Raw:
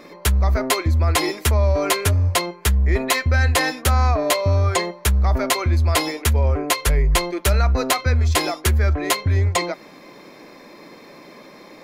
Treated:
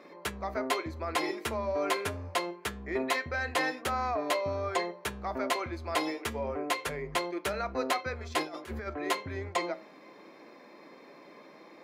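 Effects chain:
high-pass filter 220 Hz 12 dB per octave
high-shelf EQ 4,300 Hz −12 dB
mains-hum notches 60/120/180/240/300/360/420/480/540/600 Hz
0:08.43–0:08.87: compressor whose output falls as the input rises −30 dBFS, ratio −0.5
flanger 0.25 Hz, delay 5.3 ms, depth 4.5 ms, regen +85%
level −3 dB

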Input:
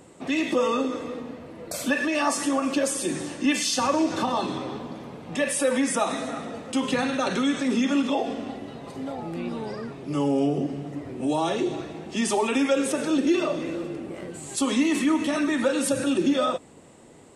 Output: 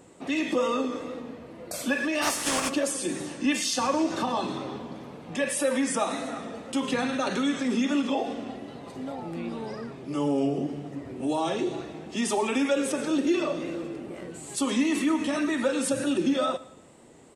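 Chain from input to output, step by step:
0:02.21–0:02.68: compressing power law on the bin magnitudes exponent 0.43
mains-hum notches 50/100/150 Hz
tape wow and flutter 43 cents
repeating echo 114 ms, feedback 40%, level −20 dB
level −2.5 dB

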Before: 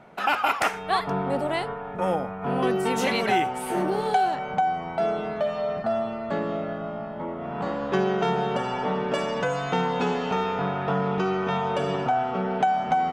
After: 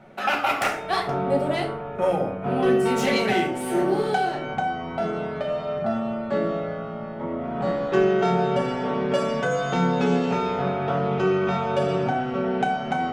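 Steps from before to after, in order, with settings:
phase distortion by the signal itself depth 0.05 ms
parametric band 1,000 Hz −7.5 dB 0.21 octaves
convolution reverb RT60 0.65 s, pre-delay 5 ms, DRR 1 dB
level −1 dB

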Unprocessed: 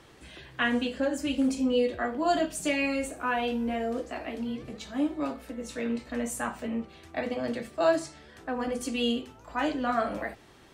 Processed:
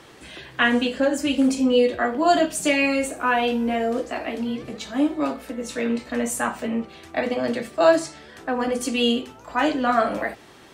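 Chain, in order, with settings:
low-shelf EQ 95 Hz −11.5 dB
level +8 dB

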